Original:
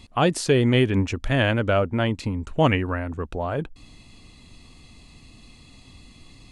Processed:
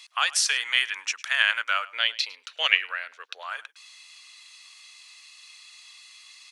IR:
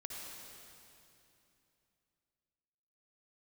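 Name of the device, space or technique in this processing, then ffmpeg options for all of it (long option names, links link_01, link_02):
headphones lying on a table: -filter_complex "[0:a]highpass=frequency=1300:width=0.5412,highpass=frequency=1300:width=1.3066,equalizer=frequency=5700:width_type=o:width=0.28:gain=7,asettb=1/sr,asplit=3[link_01][link_02][link_03];[link_01]atrim=end=1.924[link_04];[link_02]atrim=start=1.92:end=3.43,asetpts=PTS-STARTPTS,afade=type=in:duration=0.004:curve=qsin,afade=type=out:start_time=1.506:duration=0.004:curve=qsin,equalizer=frequency=125:width_type=o:width=1:gain=6,equalizer=frequency=500:width_type=o:width=1:gain=11,equalizer=frequency=1000:width_type=o:width=1:gain=-10,equalizer=frequency=4000:width_type=o:width=1:gain=12,equalizer=frequency=8000:width_type=o:width=1:gain=-10[link_05];[link_03]atrim=start=3.426[link_06];[link_04][link_05]acrossfade=duration=0.004:curve1=hsin:curve2=qsin[link_07];[link_07][link_06]acrossfade=duration=0.004:curve1=qsin:curve2=hsin,asplit=2[link_08][link_09];[link_09]adelay=105,volume=-20dB,highshelf=frequency=4000:gain=-2.36[link_10];[link_08][link_10]amix=inputs=2:normalize=0,volume=5dB"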